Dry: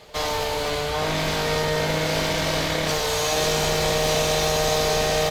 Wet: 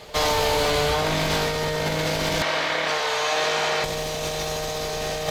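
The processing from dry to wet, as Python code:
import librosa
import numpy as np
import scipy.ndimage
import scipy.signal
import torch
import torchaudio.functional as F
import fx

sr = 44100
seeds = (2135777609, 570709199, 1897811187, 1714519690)

p1 = 10.0 ** (-20.0 / 20.0) * np.tanh(x / 10.0 ** (-20.0 / 20.0))
p2 = x + F.gain(torch.from_numpy(p1), -9.0).numpy()
p3 = fx.bandpass_q(p2, sr, hz=1500.0, q=0.7, at=(2.42, 3.84))
y = fx.over_compress(p3, sr, threshold_db=-23.0, ratio=-0.5)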